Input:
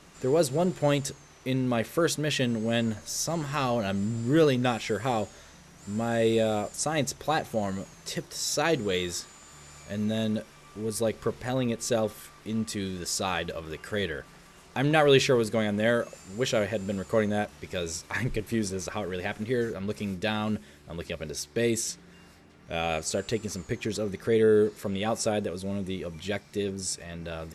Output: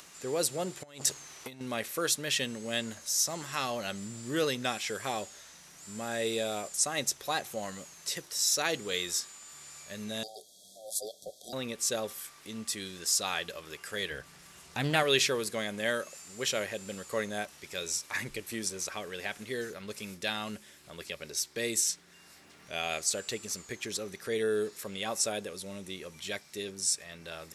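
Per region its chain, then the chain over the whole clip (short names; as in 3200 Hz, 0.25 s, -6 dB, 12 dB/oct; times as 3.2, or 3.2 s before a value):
0.83–1.61 negative-ratio compressor -32 dBFS, ratio -0.5 + core saturation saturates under 960 Hz
10.23–11.53 ring modulator 980 Hz + brick-wall FIR band-stop 750–3200 Hz
14.11–15.03 bell 88 Hz +12.5 dB 2.1 oct + Doppler distortion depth 0.31 ms
whole clip: tilt +3 dB/oct; upward compressor, threshold -43 dBFS; gain -5 dB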